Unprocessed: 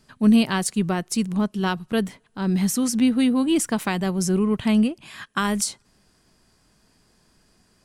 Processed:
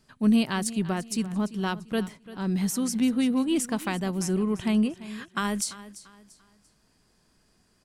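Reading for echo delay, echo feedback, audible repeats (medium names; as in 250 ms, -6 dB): 342 ms, 34%, 2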